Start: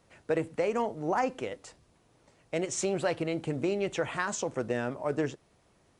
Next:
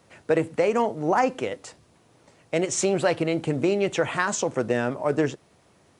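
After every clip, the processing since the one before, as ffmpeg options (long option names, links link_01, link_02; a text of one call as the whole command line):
ffmpeg -i in.wav -af "highpass=80,volume=7dB" out.wav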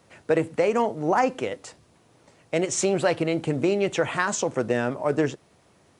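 ffmpeg -i in.wav -af anull out.wav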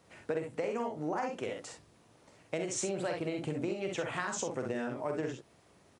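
ffmpeg -i in.wav -filter_complex "[0:a]asplit=2[link_01][link_02];[link_02]aecho=0:1:46|63:0.501|0.501[link_03];[link_01][link_03]amix=inputs=2:normalize=0,acompressor=threshold=-27dB:ratio=4,volume=-5.5dB" out.wav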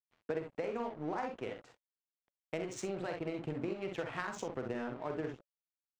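ffmpeg -i in.wav -af "aeval=exprs='sgn(val(0))*max(abs(val(0))-0.00398,0)':channel_layout=same,adynamicsmooth=sensitivity=6.5:basefreq=2900,bandreject=frequency=570:width=17,volume=-1.5dB" out.wav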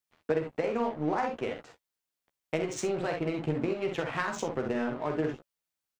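ffmpeg -i in.wav -filter_complex "[0:a]asplit=2[link_01][link_02];[link_02]adelay=13,volume=-8dB[link_03];[link_01][link_03]amix=inputs=2:normalize=0,volume=7dB" out.wav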